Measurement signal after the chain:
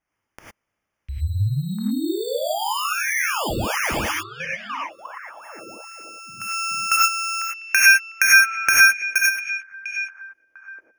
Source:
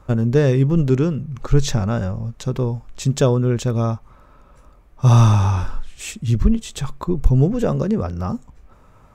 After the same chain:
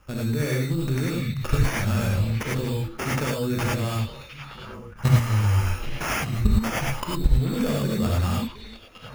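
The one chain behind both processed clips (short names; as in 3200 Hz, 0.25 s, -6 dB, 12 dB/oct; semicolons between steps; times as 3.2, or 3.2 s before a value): band shelf 3300 Hz +9 dB 2.5 oct; compressor 5:1, threshold -13 dBFS; sample-and-hold 11×; delay with a stepping band-pass 0.7 s, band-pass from 3000 Hz, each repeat -1.4 oct, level -8.5 dB; level quantiser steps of 14 dB; non-linear reverb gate 0.13 s rising, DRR -4 dB; gain -1 dB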